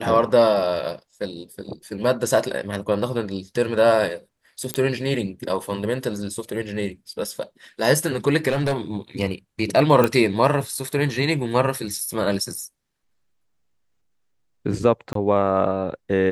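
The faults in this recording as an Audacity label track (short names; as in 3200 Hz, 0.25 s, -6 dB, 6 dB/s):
2.040000	2.040000	gap 3.9 ms
4.740000	4.740000	pop -8 dBFS
8.480000	8.740000	clipped -17 dBFS
10.040000	10.040000	pop -6 dBFS
15.130000	15.150000	gap 23 ms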